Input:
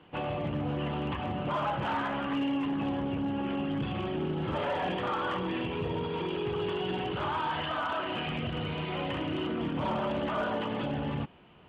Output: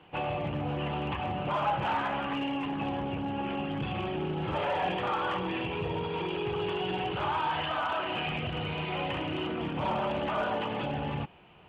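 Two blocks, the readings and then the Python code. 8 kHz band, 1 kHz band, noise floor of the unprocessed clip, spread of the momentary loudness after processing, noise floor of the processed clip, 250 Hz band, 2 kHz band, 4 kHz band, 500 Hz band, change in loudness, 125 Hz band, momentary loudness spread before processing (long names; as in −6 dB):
can't be measured, +2.5 dB, −37 dBFS, 4 LU, −37 dBFS, −2.5 dB, +1.5 dB, +1.5 dB, 0.0 dB, +0.5 dB, −0.5 dB, 3 LU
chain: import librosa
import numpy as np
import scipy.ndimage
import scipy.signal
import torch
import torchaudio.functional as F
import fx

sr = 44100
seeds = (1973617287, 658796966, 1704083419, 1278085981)

y = fx.graphic_eq_31(x, sr, hz=(250, 800, 2500), db=(-7, 5, 5))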